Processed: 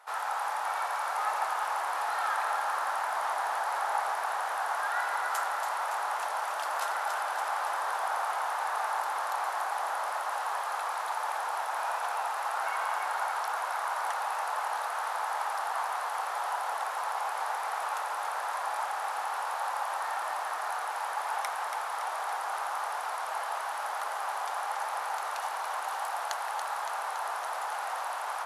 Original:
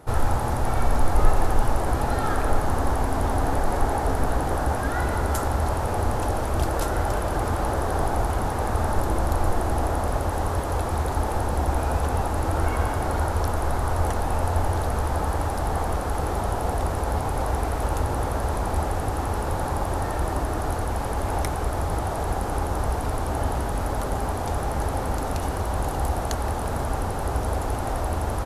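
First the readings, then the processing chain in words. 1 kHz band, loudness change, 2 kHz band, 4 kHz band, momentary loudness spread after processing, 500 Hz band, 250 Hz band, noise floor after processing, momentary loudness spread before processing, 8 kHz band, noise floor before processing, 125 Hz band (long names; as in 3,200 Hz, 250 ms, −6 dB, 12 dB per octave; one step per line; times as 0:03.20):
−2.0 dB, −6.0 dB, +0.5 dB, −2.0 dB, 4 LU, −12.5 dB, below −30 dB, −35 dBFS, 3 LU, −6.0 dB, −28 dBFS, below −40 dB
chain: high-pass filter 880 Hz 24 dB per octave
high-shelf EQ 4,600 Hz −9 dB
delay that swaps between a low-pass and a high-pass 141 ms, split 1,400 Hz, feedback 82%, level −5 dB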